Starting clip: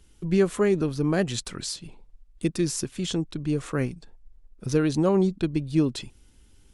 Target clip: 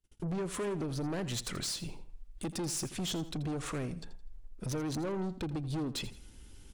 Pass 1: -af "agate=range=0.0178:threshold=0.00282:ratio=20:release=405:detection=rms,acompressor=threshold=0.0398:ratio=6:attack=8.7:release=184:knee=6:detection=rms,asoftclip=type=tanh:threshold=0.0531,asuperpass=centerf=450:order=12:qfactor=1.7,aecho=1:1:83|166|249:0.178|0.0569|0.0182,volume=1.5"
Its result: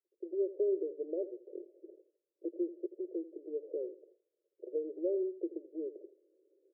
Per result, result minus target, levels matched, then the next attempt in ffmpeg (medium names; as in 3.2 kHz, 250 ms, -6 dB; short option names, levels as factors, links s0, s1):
saturation: distortion -10 dB; 500 Hz band +6.0 dB
-af "agate=range=0.0178:threshold=0.00282:ratio=20:release=405:detection=rms,acompressor=threshold=0.0398:ratio=6:attack=8.7:release=184:knee=6:detection=rms,asoftclip=type=tanh:threshold=0.0168,asuperpass=centerf=450:order=12:qfactor=1.7,aecho=1:1:83|166|249:0.178|0.0569|0.0182,volume=1.5"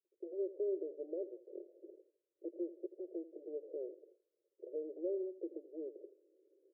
500 Hz band +6.5 dB
-af "agate=range=0.0178:threshold=0.00282:ratio=20:release=405:detection=rms,acompressor=threshold=0.0398:ratio=6:attack=8.7:release=184:knee=6:detection=rms,asoftclip=type=tanh:threshold=0.0168,aecho=1:1:83|166|249:0.178|0.0569|0.0182,volume=1.5"